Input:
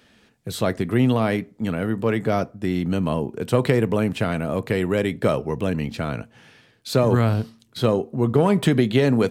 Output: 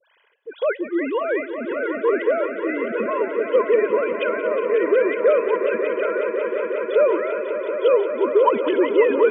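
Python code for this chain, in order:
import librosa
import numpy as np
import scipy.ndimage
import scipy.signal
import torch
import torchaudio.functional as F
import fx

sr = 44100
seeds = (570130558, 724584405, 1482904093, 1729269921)

p1 = fx.sine_speech(x, sr)
p2 = fx.highpass(p1, sr, hz=320.0, slope=6)
p3 = p2 + 0.56 * np.pad(p2, (int(2.0 * sr / 1000.0), 0))[:len(p2)]
p4 = fx.dispersion(p3, sr, late='highs', ms=64.0, hz=1700.0)
y = p4 + fx.echo_swell(p4, sr, ms=182, loudest=5, wet_db=-11, dry=0)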